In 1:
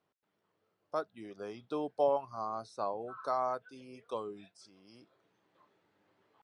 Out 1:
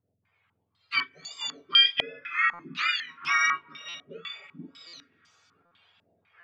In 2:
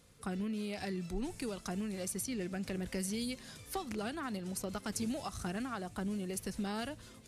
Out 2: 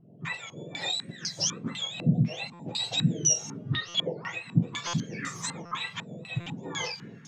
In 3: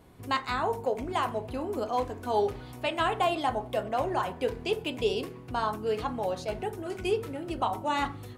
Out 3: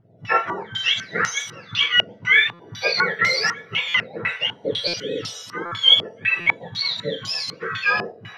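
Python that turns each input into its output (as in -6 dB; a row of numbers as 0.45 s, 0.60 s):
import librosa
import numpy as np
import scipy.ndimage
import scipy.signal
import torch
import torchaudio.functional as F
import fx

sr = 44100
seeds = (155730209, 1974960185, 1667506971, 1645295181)

p1 = fx.octave_mirror(x, sr, pivot_hz=1200.0)
p2 = fx.rev_plate(p1, sr, seeds[0], rt60_s=4.8, hf_ratio=0.75, predelay_ms=0, drr_db=20.0)
p3 = fx.volume_shaper(p2, sr, bpm=96, per_beat=1, depth_db=-9, release_ms=115.0, shape='slow start')
p4 = p2 + (p3 * librosa.db_to_amplitude(1.0))
p5 = fx.low_shelf(p4, sr, hz=270.0, db=-3.5)
p6 = p5 + fx.room_early_taps(p5, sr, ms=(18, 42), db=(-13.0, -11.0), dry=0)
p7 = fx.dynamic_eq(p6, sr, hz=470.0, q=2.1, threshold_db=-46.0, ratio=4.0, max_db=6)
p8 = fx.phaser_stages(p7, sr, stages=2, low_hz=230.0, high_hz=1200.0, hz=2.0, feedback_pct=15)
p9 = fx.buffer_glitch(p8, sr, at_s=(2.53, 3.88, 4.87, 5.65, 6.4), block=256, repeats=10)
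p10 = fx.filter_held_lowpass(p9, sr, hz=4.0, low_hz=650.0, high_hz=6000.0)
y = p10 * librosa.db_to_amplitude(3.0)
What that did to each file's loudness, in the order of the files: +12.0 LU, +9.0 LU, +10.5 LU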